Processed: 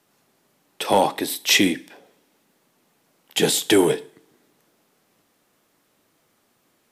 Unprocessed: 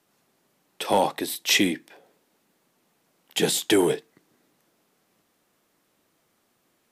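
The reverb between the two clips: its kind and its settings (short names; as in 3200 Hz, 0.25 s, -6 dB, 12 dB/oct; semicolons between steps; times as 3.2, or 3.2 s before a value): two-slope reverb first 0.49 s, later 1.7 s, from -26 dB, DRR 15 dB; gain +3.5 dB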